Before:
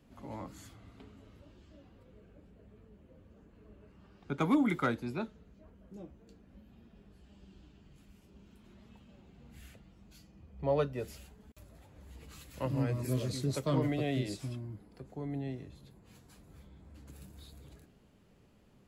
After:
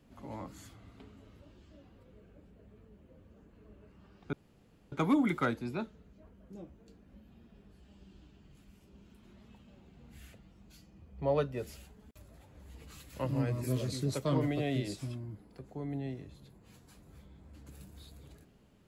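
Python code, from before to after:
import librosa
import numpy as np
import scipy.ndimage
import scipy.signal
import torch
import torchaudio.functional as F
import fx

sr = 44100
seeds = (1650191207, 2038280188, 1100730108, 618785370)

y = fx.edit(x, sr, fx.insert_room_tone(at_s=4.33, length_s=0.59), tone=tone)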